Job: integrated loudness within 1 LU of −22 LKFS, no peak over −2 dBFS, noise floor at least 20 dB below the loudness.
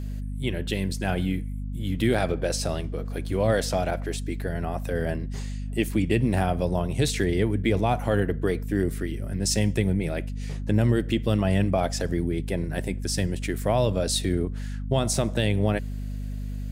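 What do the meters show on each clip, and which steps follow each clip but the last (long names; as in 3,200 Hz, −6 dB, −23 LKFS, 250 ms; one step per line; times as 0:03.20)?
mains hum 50 Hz; hum harmonics up to 250 Hz; level of the hum −29 dBFS; integrated loudness −26.5 LKFS; sample peak −9.5 dBFS; target loudness −22.0 LKFS
→ mains-hum notches 50/100/150/200/250 Hz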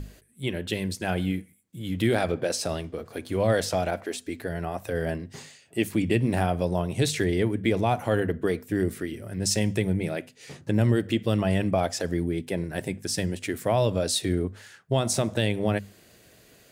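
mains hum none found; integrated loudness −27.0 LKFS; sample peak −10.5 dBFS; target loudness −22.0 LKFS
→ level +5 dB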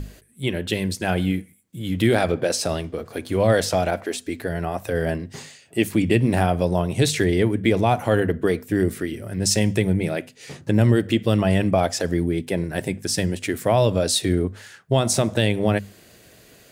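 integrated loudness −22.0 LKFS; sample peak −5.5 dBFS; background noise floor −51 dBFS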